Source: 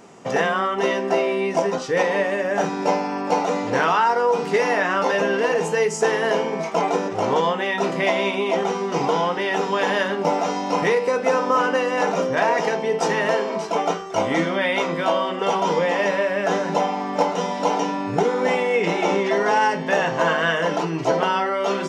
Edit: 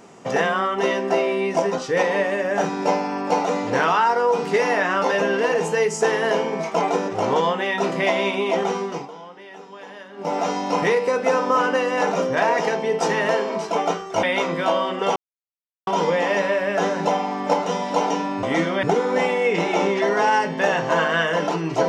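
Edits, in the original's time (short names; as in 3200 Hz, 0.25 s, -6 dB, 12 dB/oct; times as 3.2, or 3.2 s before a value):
8.78–10.43 dip -18.5 dB, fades 0.30 s
14.23–14.63 move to 18.12
15.56 insert silence 0.71 s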